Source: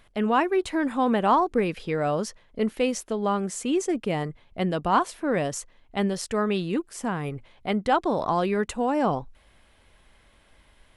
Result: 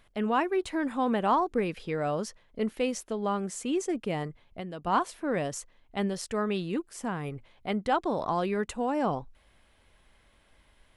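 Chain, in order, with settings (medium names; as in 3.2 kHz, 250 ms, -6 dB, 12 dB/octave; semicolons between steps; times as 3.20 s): 4.27–4.87 s: compression 6:1, threshold -31 dBFS, peak gain reduction 9.5 dB; trim -4.5 dB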